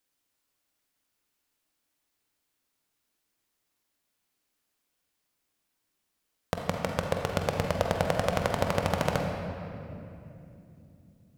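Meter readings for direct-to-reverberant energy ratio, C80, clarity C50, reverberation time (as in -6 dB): 1.5 dB, 3.5 dB, 2.5 dB, 2.9 s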